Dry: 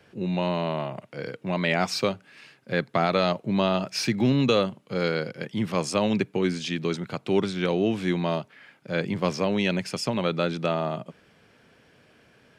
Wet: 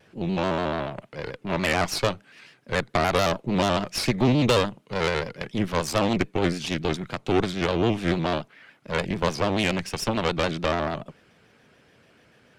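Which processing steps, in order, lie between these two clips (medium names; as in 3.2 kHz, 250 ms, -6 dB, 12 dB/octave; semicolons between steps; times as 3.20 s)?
Chebyshev shaper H 6 -14 dB, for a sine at -9 dBFS; vibrato with a chosen wave square 6.9 Hz, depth 100 cents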